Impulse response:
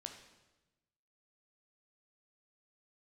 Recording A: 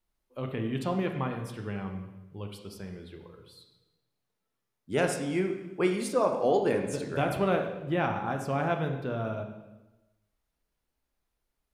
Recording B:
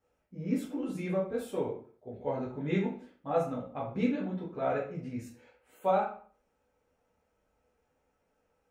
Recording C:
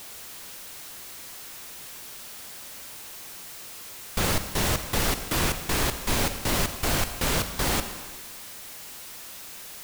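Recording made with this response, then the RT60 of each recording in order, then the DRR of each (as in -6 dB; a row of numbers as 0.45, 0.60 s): A; 1.1, 0.45, 1.6 s; 3.5, -5.5, 8.5 dB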